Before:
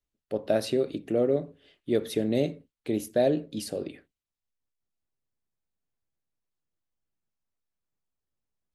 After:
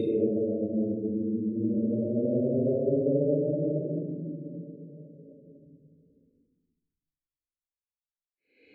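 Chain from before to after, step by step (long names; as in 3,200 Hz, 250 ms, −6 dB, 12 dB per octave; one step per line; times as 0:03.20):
gate on every frequency bin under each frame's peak −15 dB strong
downward expander −55 dBFS
extreme stretch with random phases 13×, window 0.10 s, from 0:02.17
level −1.5 dB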